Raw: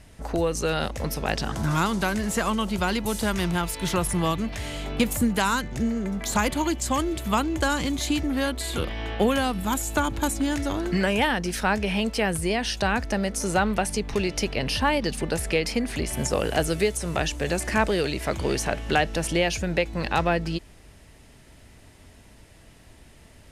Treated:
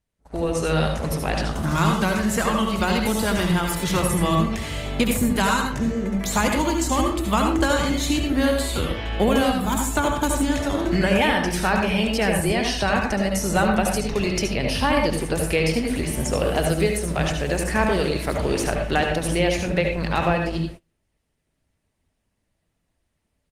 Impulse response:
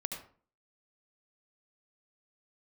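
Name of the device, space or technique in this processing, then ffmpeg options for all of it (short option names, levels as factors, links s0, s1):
speakerphone in a meeting room: -filter_complex "[1:a]atrim=start_sample=2205[s0];[0:a][s0]afir=irnorm=-1:irlink=0,asplit=2[s1][s2];[s2]adelay=260,highpass=300,lowpass=3400,asoftclip=type=hard:threshold=0.126,volume=0.0794[s3];[s1][s3]amix=inputs=2:normalize=0,dynaudnorm=f=320:g=3:m=2.24,agate=range=0.0501:threshold=0.0316:ratio=16:detection=peak,volume=0.668" -ar 48000 -c:a libopus -b:a 24k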